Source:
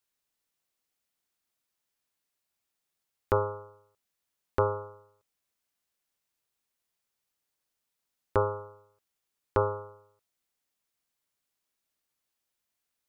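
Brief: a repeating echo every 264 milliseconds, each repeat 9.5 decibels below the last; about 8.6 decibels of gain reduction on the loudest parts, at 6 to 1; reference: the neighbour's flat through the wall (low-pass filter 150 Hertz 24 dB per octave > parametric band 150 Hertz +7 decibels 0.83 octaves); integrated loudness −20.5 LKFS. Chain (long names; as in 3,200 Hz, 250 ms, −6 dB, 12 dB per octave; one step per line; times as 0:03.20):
downward compressor 6 to 1, threshold −29 dBFS
low-pass filter 150 Hz 24 dB per octave
parametric band 150 Hz +7 dB 0.83 octaves
repeating echo 264 ms, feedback 33%, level −9.5 dB
level +26 dB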